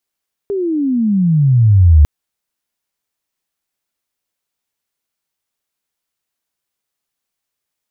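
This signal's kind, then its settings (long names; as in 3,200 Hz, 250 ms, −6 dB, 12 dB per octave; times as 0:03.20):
glide logarithmic 410 Hz → 71 Hz −15.5 dBFS → −3 dBFS 1.55 s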